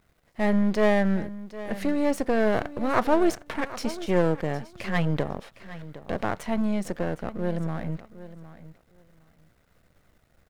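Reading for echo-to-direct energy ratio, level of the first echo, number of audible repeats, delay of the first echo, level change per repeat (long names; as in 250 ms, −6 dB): −15.5 dB, −15.5 dB, 2, 760 ms, −15.5 dB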